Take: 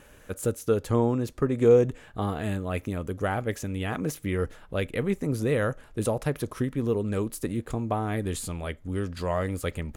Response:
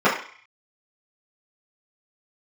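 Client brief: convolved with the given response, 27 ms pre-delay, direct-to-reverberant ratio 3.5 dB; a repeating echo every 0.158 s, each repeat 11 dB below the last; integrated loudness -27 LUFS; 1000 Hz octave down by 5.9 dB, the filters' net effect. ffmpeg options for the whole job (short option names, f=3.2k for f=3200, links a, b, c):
-filter_complex "[0:a]equalizer=f=1k:t=o:g=-8.5,aecho=1:1:158|316|474:0.282|0.0789|0.0221,asplit=2[a][b];[1:a]atrim=start_sample=2205,adelay=27[c];[b][c]afir=irnorm=-1:irlink=0,volume=-25.5dB[d];[a][d]amix=inputs=2:normalize=0"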